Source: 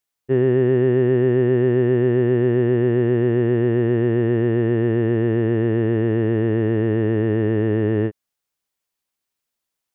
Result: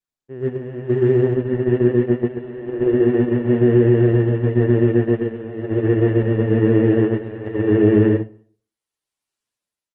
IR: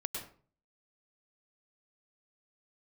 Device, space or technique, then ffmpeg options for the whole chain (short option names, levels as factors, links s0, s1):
speakerphone in a meeting room: -filter_complex "[1:a]atrim=start_sample=2205[s0];[0:a][s0]afir=irnorm=-1:irlink=0,asplit=2[s1][s2];[s2]adelay=200,highpass=300,lowpass=3400,asoftclip=type=hard:threshold=0.251,volume=0.0708[s3];[s1][s3]amix=inputs=2:normalize=0,dynaudnorm=f=190:g=9:m=6.31,agate=range=0.282:threshold=0.251:ratio=16:detection=peak,volume=0.708" -ar 48000 -c:a libopus -b:a 16k